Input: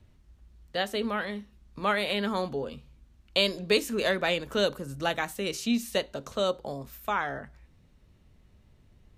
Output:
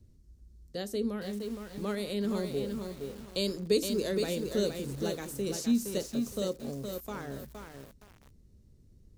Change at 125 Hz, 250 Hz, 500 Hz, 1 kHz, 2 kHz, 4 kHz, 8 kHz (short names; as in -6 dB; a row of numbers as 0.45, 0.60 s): +1.0, +1.0, -3.0, -14.0, -14.0, -8.5, +1.0 dB